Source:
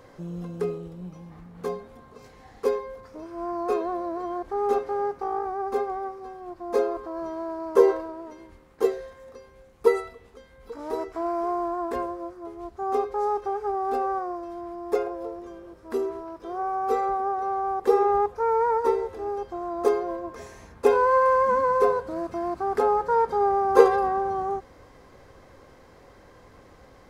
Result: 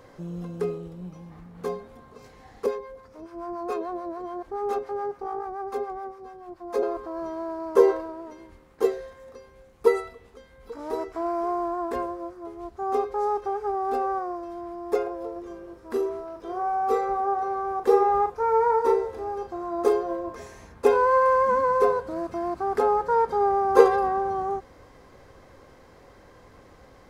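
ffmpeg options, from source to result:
-filter_complex "[0:a]asettb=1/sr,asplit=3[a][b][c];[a]atrim=end=2.664[d];[b]atrim=start=2.66:end=6.83,asetpts=PTS-STARTPTS,afade=t=in:d=0.004:c=qsin,afade=t=out:st=4.166:d=0.004:c=qsin,acrossover=split=620[e][f];[e]aeval=exprs='val(0)*(1-0.7/2+0.7/2*cos(2*PI*7*n/s))':c=same[g];[f]aeval=exprs='val(0)*(1-0.7/2-0.7/2*cos(2*PI*7*n/s))':c=same[h];[g][h]amix=inputs=2:normalize=0[i];[c]atrim=start=6.826[j];[d][i]acrossfade=d=0.004:c1=hsin:c2=qsin[k];[k][j]acrossfade=d=0.004:c1=qsin:c2=hsin,asettb=1/sr,asplit=3[l][m][n];[l]atrim=end=15.324[o];[m]atrim=start=15.32:end=20.38,asetpts=PTS-STARTPTS,afade=t=in:d=0.004:c=qsin,afade=t=out:st=5.056:d=0.004:c=qsin,asplit=2[p][q];[q]adelay=38,volume=-7dB[r];[p][r]amix=inputs=2:normalize=0,atrim=end_sample=223146[s];[n]atrim=start=20.376[t];[o][s]acrossfade=d=0.004:c1=hsin:c2=qsin[u];[u][t]acrossfade=d=0.004:c1=qsin:c2=hsin"

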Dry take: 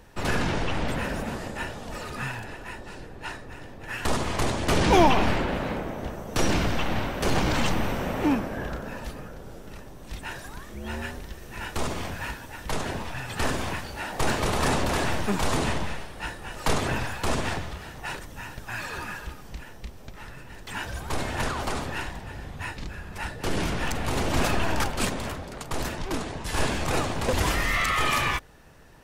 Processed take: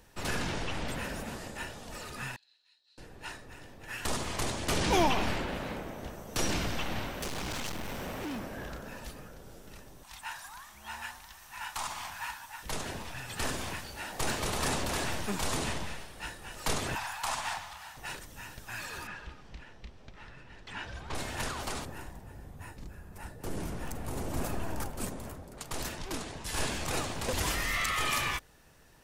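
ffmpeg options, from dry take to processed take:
-filter_complex "[0:a]asettb=1/sr,asplit=3[a][b][c];[a]atrim=end=2.364[d];[b]atrim=start=2.36:end=2.98,asetpts=PTS-STARTPTS,afade=t=in:d=0.004:c=qsin,afade=t=out:st=0.616:d=0.004:c=qsin,bandpass=f=4.1k:t=q:w=16[e];[c]atrim=start=2.976[f];[d][e]acrossfade=d=0.004:c1=hsin:c2=qsin[g];[g][f]acrossfade=d=0.004:c1=qsin:c2=hsin,asettb=1/sr,asplit=3[h][i][j];[h]atrim=end=7.224[k];[i]atrim=start=7.22:end=8.99,asetpts=PTS-STARTPTS,afade=t=in:d=0.004:c=qsin,afade=t=out:st=1.766:d=0.004:c=qsin,asoftclip=type=hard:threshold=-26.5dB[l];[j]atrim=start=8.986[m];[k][l]acrossfade=d=0.004:c1=hsin:c2=qsin[n];[n][m]acrossfade=d=0.004:c1=qsin:c2=hsin,asettb=1/sr,asplit=3[o][p][q];[o]atrim=end=10.034[r];[p]atrim=start=10.03:end=12.63,asetpts=PTS-STARTPTS,afade=t=in:d=0.004:c=qsin,afade=t=out:st=2.596:d=0.004:c=qsin,lowshelf=f=640:t=q:w=3:g=-11.5[s];[q]atrim=start=12.626[t];[r][s]acrossfade=d=0.004:c1=hsin:c2=qsin[u];[u][t]acrossfade=d=0.004:c1=qsin:c2=hsin,asettb=1/sr,asplit=3[v][w][x];[v]atrim=end=16.954[y];[w]atrim=start=16.95:end=17.97,asetpts=PTS-STARTPTS,afade=t=in:d=0.004:c=qsin,afade=t=out:st=1.016:d=0.004:c=qsin,lowshelf=f=600:t=q:w=3:g=-12[z];[x]atrim=start=17.966[aa];[y][z]acrossfade=d=0.004:c1=hsin:c2=qsin[ab];[ab][aa]acrossfade=d=0.004:c1=qsin:c2=hsin,asettb=1/sr,asplit=3[ac][ad][ae];[ac]atrim=end=19.074[af];[ad]atrim=start=19.07:end=21.15,asetpts=PTS-STARTPTS,afade=t=in:d=0.004:c=qsin,afade=t=out:st=2.076:d=0.004:c=qsin,lowpass=3.8k[ag];[ae]atrim=start=21.146[ah];[af][ag]acrossfade=d=0.004:c1=hsin:c2=qsin[ai];[ai][ah]acrossfade=d=0.004:c1=qsin:c2=hsin,asettb=1/sr,asplit=3[aj][ak][al];[aj]atrim=end=21.854[am];[ak]atrim=start=21.85:end=25.58,asetpts=PTS-STARTPTS,afade=t=in:d=0.004:c=qsin,afade=t=out:st=3.726:d=0.004:c=qsin,equalizer=f=3.5k:w=0.44:g=-13.5[an];[al]atrim=start=25.576[ao];[am][an]acrossfade=d=0.004:c1=hsin:c2=qsin[ap];[ap][ao]acrossfade=d=0.004:c1=qsin:c2=hsin,highshelf=f=3.2k:g=8.5,volume=-8.5dB"

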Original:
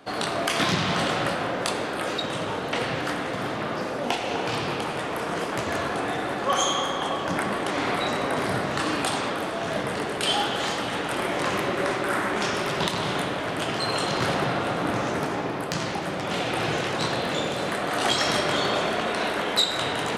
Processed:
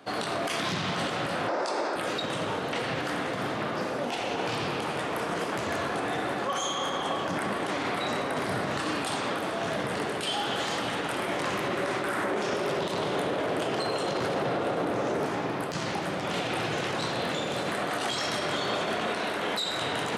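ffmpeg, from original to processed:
-filter_complex "[0:a]asettb=1/sr,asplit=3[a][b][c];[a]atrim=end=1.484[d];[b]atrim=start=1.48:end=1.96,asetpts=PTS-STARTPTS,afade=t=in:d=0.004:c=qsin,afade=t=out:st=0.476:d=0.004:c=qsin,highpass=300,equalizer=f=350:t=q:w=4:g=8,equalizer=f=600:t=q:w=4:g=7,equalizer=f=890:t=q:w=4:g=8,equalizer=f=1.3k:t=q:w=4:g=4,equalizer=f=3.1k:t=q:w=4:g=-7,equalizer=f=5.2k:t=q:w=4:g=9,lowpass=f=9k:w=0.5412,lowpass=f=9k:w=1.3066[e];[c]atrim=start=1.956[f];[d][e]acrossfade=d=0.004:c1=hsin:c2=qsin[g];[g][f]acrossfade=d=0.004:c1=qsin:c2=hsin,asettb=1/sr,asplit=3[h][i][j];[h]atrim=end=12.234[k];[i]atrim=start=12.23:end=15.26,asetpts=PTS-STARTPTS,afade=t=in:d=0.004:c=qsin,afade=t=out:st=3.026:d=0.004:c=qsin,equalizer=f=460:w=0.95:g=8.5[l];[j]atrim=start=15.256[m];[k][l]acrossfade=d=0.004:c1=hsin:c2=qsin[n];[n][m]acrossfade=d=0.004:c1=qsin:c2=hsin,highpass=70,alimiter=limit=-19dB:level=0:latency=1:release=46,volume=-1.5dB"

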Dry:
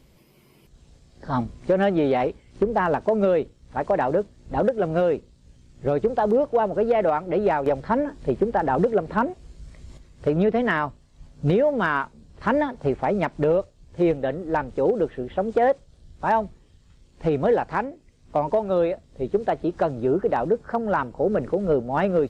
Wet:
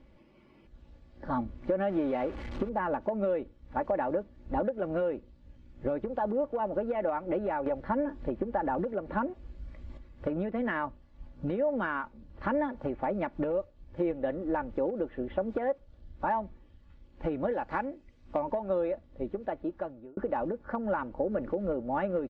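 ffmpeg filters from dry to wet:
-filter_complex "[0:a]asettb=1/sr,asplit=3[a][b][c];[a]atrim=end=1.894[d];[b]atrim=start=1.89:end=2.69,asetpts=PTS-STARTPTS,afade=t=in:d=0.004:c=qsin,afade=t=out:st=0.796:d=0.004:c=qsin,aeval=exprs='val(0)+0.5*0.0266*sgn(val(0))':c=same[e];[c]atrim=start=2.686[f];[d][e]acrossfade=d=0.004:c1=hsin:c2=qsin[g];[g][f]acrossfade=d=0.004:c1=qsin:c2=hsin,asettb=1/sr,asplit=3[h][i][j];[h]atrim=end=17.514[k];[i]atrim=start=17.51:end=18.42,asetpts=PTS-STARTPTS,afade=t=in:d=0.004:c=qsin,afade=t=out:st=0.906:d=0.004:c=qsin,highshelf=f=3.2k:g=8[l];[j]atrim=start=18.416[m];[k][l]acrossfade=d=0.004:c1=hsin:c2=qsin[n];[n][m]acrossfade=d=0.004:c1=qsin:c2=hsin,asplit=2[o][p];[o]atrim=end=20.17,asetpts=PTS-STARTPTS,afade=t=out:st=18.92:d=1.25[q];[p]atrim=start=20.17,asetpts=PTS-STARTPTS,afade=t=in:d=0.004:c=hsin[r];[q][r]concat=n=2:v=0:a=1,acompressor=threshold=-25dB:ratio=6,lowpass=2.4k,aecho=1:1:3.5:0.53,volume=-3dB"

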